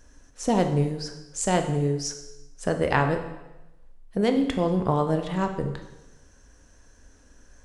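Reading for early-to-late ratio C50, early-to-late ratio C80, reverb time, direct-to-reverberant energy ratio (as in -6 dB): 8.5 dB, 10.5 dB, 1.0 s, 5.5 dB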